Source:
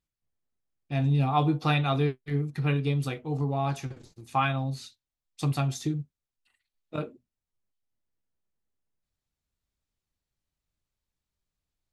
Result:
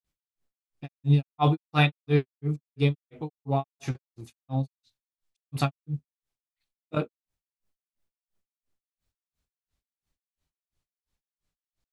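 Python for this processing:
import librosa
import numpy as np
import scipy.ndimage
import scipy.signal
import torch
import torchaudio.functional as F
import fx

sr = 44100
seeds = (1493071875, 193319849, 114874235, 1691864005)

y = fx.granulator(x, sr, seeds[0], grain_ms=197.0, per_s=2.9, spray_ms=100.0, spread_st=0)
y = y * 10.0 ** (6.0 / 20.0)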